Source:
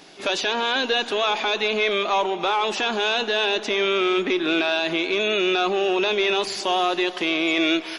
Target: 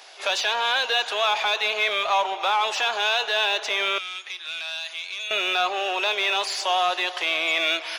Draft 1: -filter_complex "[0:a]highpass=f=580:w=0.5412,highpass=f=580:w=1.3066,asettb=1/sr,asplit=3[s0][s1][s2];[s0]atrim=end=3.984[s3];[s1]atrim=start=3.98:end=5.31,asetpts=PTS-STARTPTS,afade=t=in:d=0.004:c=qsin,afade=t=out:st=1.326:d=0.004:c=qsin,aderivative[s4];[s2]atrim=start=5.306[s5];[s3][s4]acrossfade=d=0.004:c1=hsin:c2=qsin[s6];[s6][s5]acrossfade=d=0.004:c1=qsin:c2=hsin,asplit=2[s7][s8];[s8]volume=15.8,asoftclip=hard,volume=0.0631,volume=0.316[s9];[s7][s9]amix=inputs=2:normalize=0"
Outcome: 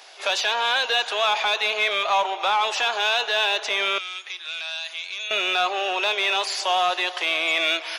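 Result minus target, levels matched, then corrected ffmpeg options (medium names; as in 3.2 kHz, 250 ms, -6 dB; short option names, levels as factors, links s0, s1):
overload inside the chain: distortion -5 dB
-filter_complex "[0:a]highpass=f=580:w=0.5412,highpass=f=580:w=1.3066,asettb=1/sr,asplit=3[s0][s1][s2];[s0]atrim=end=3.984[s3];[s1]atrim=start=3.98:end=5.31,asetpts=PTS-STARTPTS,afade=t=in:d=0.004:c=qsin,afade=t=out:st=1.326:d=0.004:c=qsin,aderivative[s4];[s2]atrim=start=5.306[s5];[s3][s4]acrossfade=d=0.004:c1=hsin:c2=qsin[s6];[s6][s5]acrossfade=d=0.004:c1=qsin:c2=hsin,asplit=2[s7][s8];[s8]volume=39.8,asoftclip=hard,volume=0.0251,volume=0.316[s9];[s7][s9]amix=inputs=2:normalize=0"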